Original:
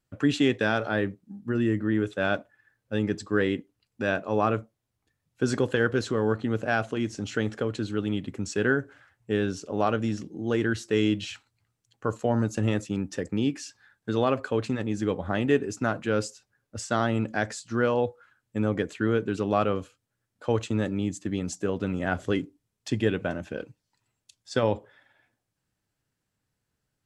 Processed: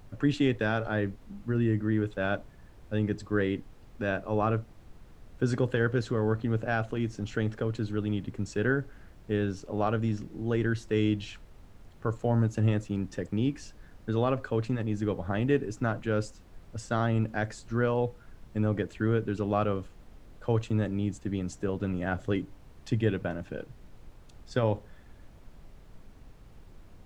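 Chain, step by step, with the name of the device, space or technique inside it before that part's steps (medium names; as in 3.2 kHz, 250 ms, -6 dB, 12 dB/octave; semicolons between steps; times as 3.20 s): car interior (peaking EQ 120 Hz +6.5 dB 0.76 oct; treble shelf 3.7 kHz -7 dB; brown noise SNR 18 dB); trim -3.5 dB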